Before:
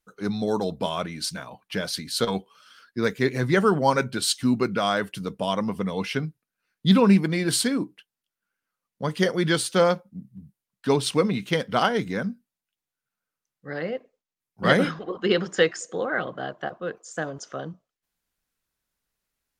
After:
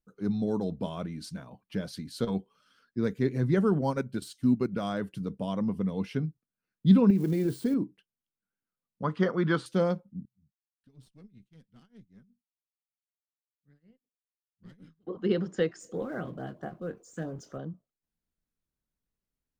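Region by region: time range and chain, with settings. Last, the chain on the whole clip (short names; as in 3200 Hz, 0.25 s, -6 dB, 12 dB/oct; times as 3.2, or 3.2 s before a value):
3.81–4.93 high shelf 10000 Hz +9 dB + transient shaper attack -1 dB, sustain -8 dB + mismatched tape noise reduction encoder only
7.1–7.74 switching spikes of -21 dBFS + bell 410 Hz +10 dB 0.57 oct + compressor 10:1, threshold -18 dBFS
9.03–9.66 BPF 140–4800 Hz + bell 1200 Hz +15 dB 0.97 oct
10.25–15.07 passive tone stack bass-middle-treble 6-0-2 + tremolo 5.2 Hz, depth 90% + tube stage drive 41 dB, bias 0.7
15.8–17.58 G.711 law mismatch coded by mu + LFO notch saw up 4.5 Hz 370–5900 Hz + doubler 24 ms -10 dB
whole clip: EQ curve 230 Hz 0 dB, 770 Hz -10 dB, 2200 Hz -14 dB; de-esser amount 85%; gain -1 dB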